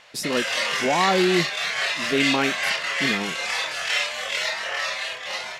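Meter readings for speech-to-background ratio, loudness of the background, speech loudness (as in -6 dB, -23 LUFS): -1.0 dB, -24.0 LUFS, -25.0 LUFS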